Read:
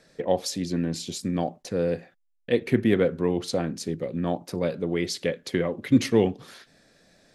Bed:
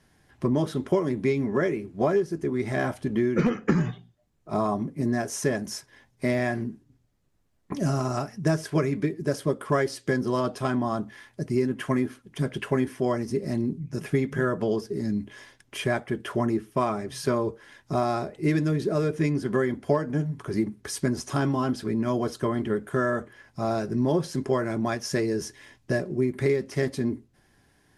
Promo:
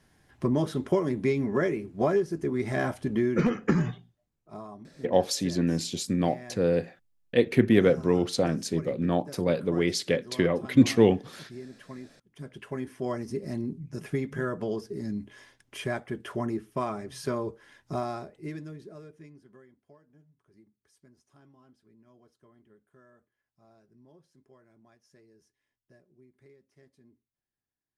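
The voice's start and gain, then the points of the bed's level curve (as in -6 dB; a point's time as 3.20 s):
4.85 s, +1.0 dB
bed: 3.93 s -1.5 dB
4.68 s -18 dB
12.18 s -18 dB
13.12 s -5.5 dB
17.94 s -5.5 dB
19.82 s -34 dB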